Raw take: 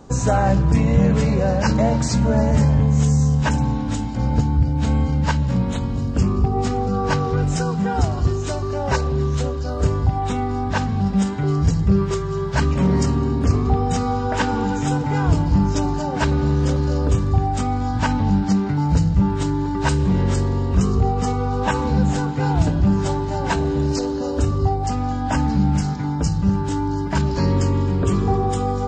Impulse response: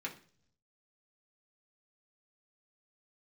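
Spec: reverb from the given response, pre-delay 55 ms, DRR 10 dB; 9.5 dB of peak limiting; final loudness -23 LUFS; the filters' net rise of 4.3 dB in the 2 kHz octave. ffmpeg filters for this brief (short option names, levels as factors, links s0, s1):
-filter_complex "[0:a]equalizer=f=2000:t=o:g=6,alimiter=limit=0.211:level=0:latency=1,asplit=2[s0][s1];[1:a]atrim=start_sample=2205,adelay=55[s2];[s1][s2]afir=irnorm=-1:irlink=0,volume=0.282[s3];[s0][s3]amix=inputs=2:normalize=0,volume=0.944"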